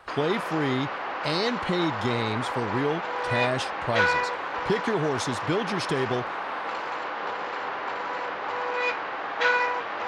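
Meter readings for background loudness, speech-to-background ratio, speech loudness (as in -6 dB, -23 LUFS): -29.0 LUFS, 0.0 dB, -29.0 LUFS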